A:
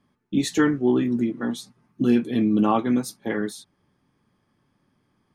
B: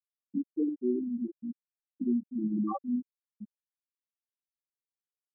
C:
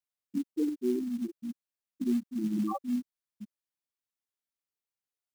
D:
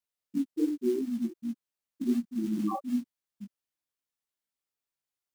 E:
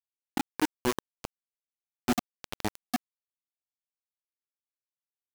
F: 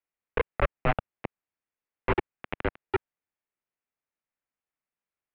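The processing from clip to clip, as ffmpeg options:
-af "bandreject=f=45.04:t=h:w=4,bandreject=f=90.08:t=h:w=4,bandreject=f=135.12:t=h:w=4,bandreject=f=180.16:t=h:w=4,bandreject=f=225.2:t=h:w=4,bandreject=f=270.24:t=h:w=4,bandreject=f=315.28:t=h:w=4,bandreject=f=360.32:t=h:w=4,bandreject=f=405.36:t=h:w=4,bandreject=f=450.4:t=h:w=4,bandreject=f=495.44:t=h:w=4,bandreject=f=540.48:t=h:w=4,bandreject=f=585.52:t=h:w=4,bandreject=f=630.56:t=h:w=4,bandreject=f=675.6:t=h:w=4,bandreject=f=720.64:t=h:w=4,bandreject=f=765.68:t=h:w=4,bandreject=f=810.72:t=h:w=4,bandreject=f=855.76:t=h:w=4,bandreject=f=900.8:t=h:w=4,afftfilt=real='re*gte(hypot(re,im),0.501)':imag='im*gte(hypot(re,im),0.501)':win_size=1024:overlap=0.75,volume=-8.5dB"
-af "acrusher=bits=6:mode=log:mix=0:aa=0.000001"
-af "flanger=delay=17:depth=5.1:speed=2.7,volume=4dB"
-af "acrusher=bits=3:mix=0:aa=0.000001,volume=-2dB"
-af "highpass=f=370:t=q:w=0.5412,highpass=f=370:t=q:w=1.307,lowpass=f=2.9k:t=q:w=0.5176,lowpass=f=2.9k:t=q:w=0.7071,lowpass=f=2.9k:t=q:w=1.932,afreqshift=-350,volume=7.5dB"

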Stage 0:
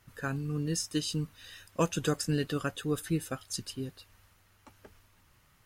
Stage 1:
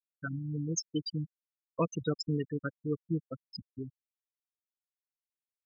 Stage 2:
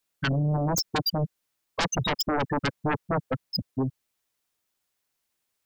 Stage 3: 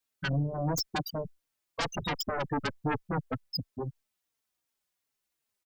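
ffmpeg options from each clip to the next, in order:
-af "aeval=exprs='val(0)+0.00398*(sin(2*PI*60*n/s)+sin(2*PI*2*60*n/s)/2+sin(2*PI*3*60*n/s)/3+sin(2*PI*4*60*n/s)/4+sin(2*PI*5*60*n/s)/5)':c=same,afftfilt=real='re*gte(hypot(re,im),0.0891)':imag='im*gte(hypot(re,im),0.0891)':win_size=1024:overlap=0.75,crystalizer=i=3:c=0,volume=-2dB"
-af "aeval=exprs='0.133*sin(PI/2*7.08*val(0)/0.133)':c=same,volume=-4dB"
-filter_complex "[0:a]asplit=2[a][b];[b]adelay=3.8,afreqshift=-2.8[c];[a][c]amix=inputs=2:normalize=1,volume=-2dB"

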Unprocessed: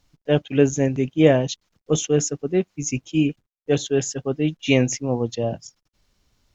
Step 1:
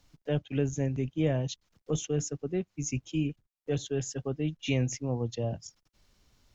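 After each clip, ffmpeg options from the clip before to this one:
-filter_complex "[0:a]acrossover=split=120[a][b];[b]acompressor=threshold=-39dB:ratio=2[c];[a][c]amix=inputs=2:normalize=0"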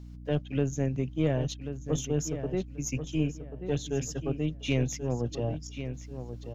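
-filter_complex "[0:a]aeval=exprs='0.178*(cos(1*acos(clip(val(0)/0.178,-1,1)))-cos(1*PI/2))+0.0112*(cos(4*acos(clip(val(0)/0.178,-1,1)))-cos(4*PI/2))+0.00126*(cos(8*acos(clip(val(0)/0.178,-1,1)))-cos(8*PI/2))':c=same,aeval=exprs='val(0)+0.00708*(sin(2*PI*60*n/s)+sin(2*PI*2*60*n/s)/2+sin(2*PI*3*60*n/s)/3+sin(2*PI*4*60*n/s)/4+sin(2*PI*5*60*n/s)/5)':c=same,asplit=2[a][b];[b]adelay=1086,lowpass=f=3.5k:p=1,volume=-9.5dB,asplit=2[c][d];[d]adelay=1086,lowpass=f=3.5k:p=1,volume=0.26,asplit=2[e][f];[f]adelay=1086,lowpass=f=3.5k:p=1,volume=0.26[g];[a][c][e][g]amix=inputs=4:normalize=0"

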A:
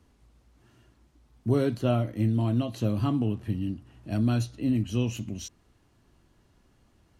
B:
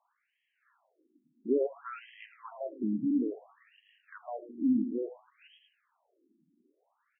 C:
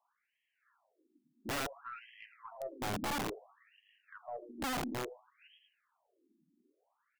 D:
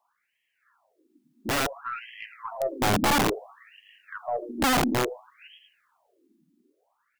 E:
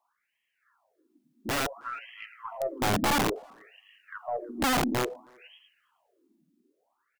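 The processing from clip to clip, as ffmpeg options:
-af "aecho=1:1:109|218|327|436|545:0.316|0.158|0.0791|0.0395|0.0198,afftfilt=real='re*between(b*sr/1024,240*pow(2400/240,0.5+0.5*sin(2*PI*0.58*pts/sr))/1.41,240*pow(2400/240,0.5+0.5*sin(2*PI*0.58*pts/sr))*1.41)':imag='im*between(b*sr/1024,240*pow(2400/240,0.5+0.5*sin(2*PI*0.58*pts/sr))/1.41,240*pow(2400/240,0.5+0.5*sin(2*PI*0.58*pts/sr))*1.41)':win_size=1024:overlap=0.75"
-af "aeval=exprs='(tanh(17.8*val(0)+0.2)-tanh(0.2))/17.8':c=same,aeval=exprs='(mod(28.2*val(0)+1,2)-1)/28.2':c=same,volume=-3dB"
-af "dynaudnorm=f=260:g=13:m=7dB,volume=7dB"
-filter_complex "[0:a]asplit=2[a][b];[b]adelay=320,highpass=300,lowpass=3.4k,asoftclip=type=hard:threshold=-27.5dB,volume=-24dB[c];[a][c]amix=inputs=2:normalize=0,volume=-3dB"

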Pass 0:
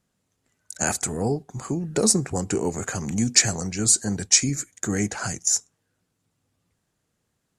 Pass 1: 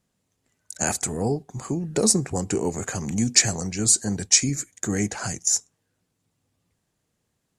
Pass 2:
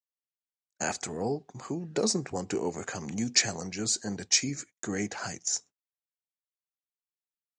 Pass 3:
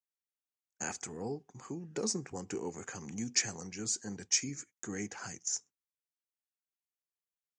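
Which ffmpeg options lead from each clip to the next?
-af "equalizer=f=1.4k:t=o:w=0.41:g=-3.5"
-af "lowpass=f=6.1k:w=0.5412,lowpass=f=6.1k:w=1.3066,agate=range=-40dB:threshold=-42dB:ratio=16:detection=peak,highpass=f=280:p=1,volume=-3.5dB"
-af "equalizer=f=630:t=o:w=0.33:g=-9,equalizer=f=4k:t=o:w=0.33:g=-8,equalizer=f=6.3k:t=o:w=0.33:g=4,volume=-7dB"

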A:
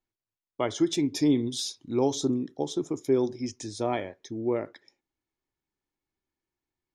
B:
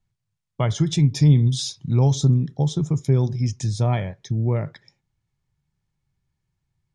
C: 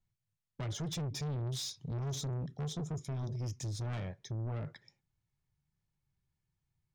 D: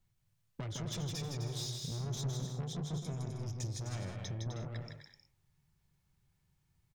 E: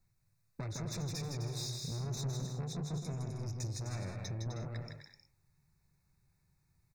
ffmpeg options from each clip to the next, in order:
-filter_complex "[0:a]lowpass=f=9.6k:w=0.5412,lowpass=f=9.6k:w=1.3066,lowshelf=f=210:t=q:w=3:g=12.5,asplit=2[a][b];[b]acompressor=threshold=-25dB:ratio=6,volume=-2dB[c];[a][c]amix=inputs=2:normalize=0"
-af "alimiter=limit=-11.5dB:level=0:latency=1:release=37,asoftclip=type=tanh:threshold=-26.5dB,volume=-8dB"
-filter_complex "[0:a]acompressor=threshold=-48dB:ratio=4,asplit=2[a][b];[b]aecho=0:1:160|256|313.6|348.2|368.9:0.631|0.398|0.251|0.158|0.1[c];[a][c]amix=inputs=2:normalize=0,volume=6.5dB"
-af "asoftclip=type=tanh:threshold=-30.5dB,asuperstop=centerf=3100:order=12:qfactor=3.3,volume=1dB"

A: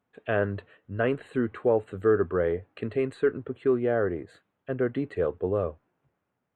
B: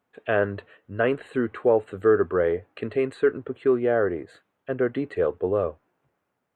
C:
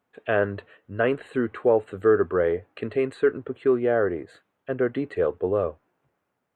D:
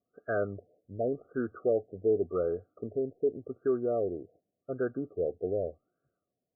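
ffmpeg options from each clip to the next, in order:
-af "bass=f=250:g=-6,treble=f=4k:g=-1,volume=4dB"
-af anull
-af "asuperstop=centerf=930:order=20:qfactor=2.4,afftfilt=real='re*lt(b*sr/1024,770*pow(1700/770,0.5+0.5*sin(2*PI*0.87*pts/sr)))':imag='im*lt(b*sr/1024,770*pow(1700/770,0.5+0.5*sin(2*PI*0.87*pts/sr)))':win_size=1024:overlap=0.75,volume=-7.5dB"

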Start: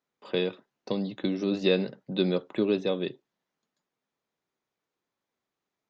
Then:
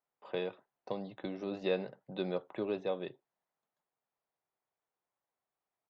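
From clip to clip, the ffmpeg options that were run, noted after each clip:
-af "firequalizer=gain_entry='entry(110,0);entry(220,-7);entry(720,7);entry(1200,2);entry(4600,-9)':delay=0.05:min_phase=1,volume=-7.5dB"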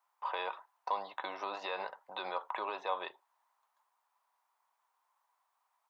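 -af "alimiter=level_in=5.5dB:limit=-24dB:level=0:latency=1:release=48,volume=-5.5dB,highpass=f=980:t=q:w=4.8,volume=7dB"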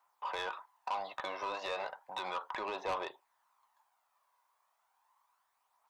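-af "aphaser=in_gain=1:out_gain=1:delay=2:decay=0.36:speed=0.34:type=triangular,asoftclip=type=tanh:threshold=-32.5dB,volume=2.5dB"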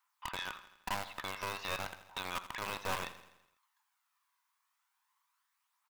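-filter_complex "[0:a]acrossover=split=1200[a][b];[a]acrusher=bits=3:dc=4:mix=0:aa=0.000001[c];[c][b]amix=inputs=2:normalize=0,aecho=1:1:83|166|249|332|415|498:0.2|0.11|0.0604|0.0332|0.0183|0.01,volume=1dB"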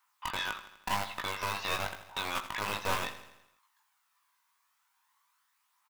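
-filter_complex "[0:a]asplit=2[a][b];[b]asoftclip=type=tanh:threshold=-31dB,volume=-6dB[c];[a][c]amix=inputs=2:normalize=0,asplit=2[d][e];[e]adelay=19,volume=-5dB[f];[d][f]amix=inputs=2:normalize=0,volume=1.5dB"

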